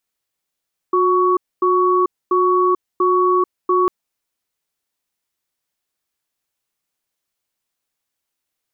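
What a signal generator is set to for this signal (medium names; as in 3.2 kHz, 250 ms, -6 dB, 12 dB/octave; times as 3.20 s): cadence 363 Hz, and 1.12 kHz, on 0.44 s, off 0.25 s, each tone -15 dBFS 2.95 s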